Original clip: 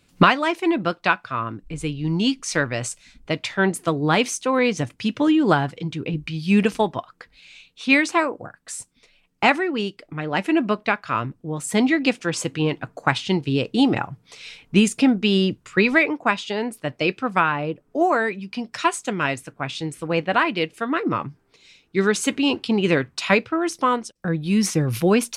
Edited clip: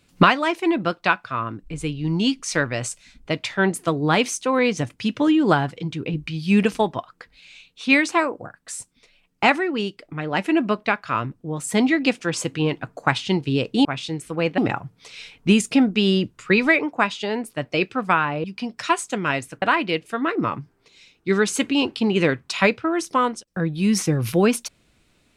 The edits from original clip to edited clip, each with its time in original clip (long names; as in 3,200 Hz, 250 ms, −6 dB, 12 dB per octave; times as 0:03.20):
0:17.71–0:18.39: remove
0:19.57–0:20.30: move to 0:13.85